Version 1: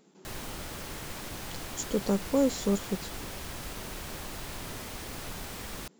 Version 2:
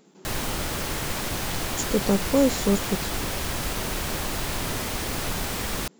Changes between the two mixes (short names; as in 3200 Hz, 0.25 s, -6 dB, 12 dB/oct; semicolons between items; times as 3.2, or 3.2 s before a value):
speech +5.0 dB; background +11.0 dB